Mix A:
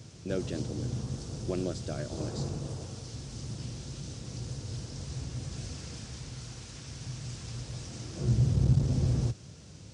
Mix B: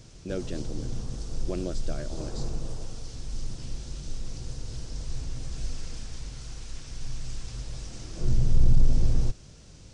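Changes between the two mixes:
background: add low shelf 200 Hz -5.5 dB; master: remove HPF 81 Hz 24 dB/oct

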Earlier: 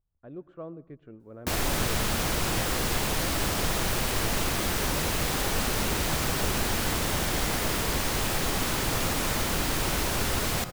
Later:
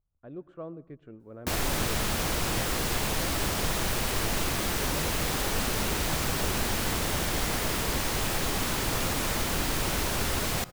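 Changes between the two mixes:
speech: remove air absorption 63 m; background: send -8.5 dB

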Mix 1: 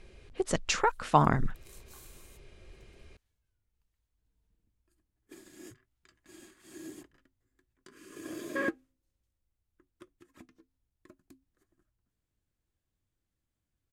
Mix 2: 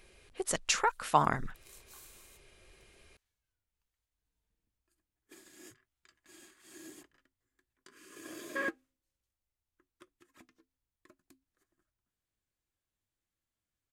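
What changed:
speech: remove LPF 7100 Hz 12 dB/oct; master: add low shelf 450 Hz -10.5 dB

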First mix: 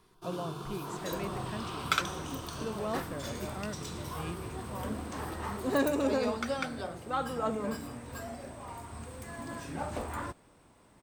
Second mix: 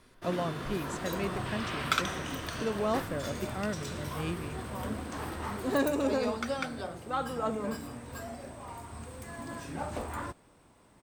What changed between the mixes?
speech +5.5 dB; first sound: remove fixed phaser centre 380 Hz, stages 8

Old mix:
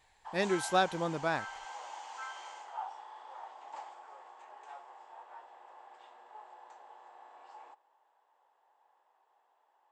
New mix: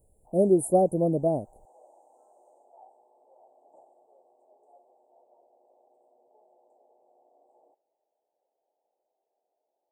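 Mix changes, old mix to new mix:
speech +11.5 dB; master: add Chebyshev band-stop 650–9300 Hz, order 4

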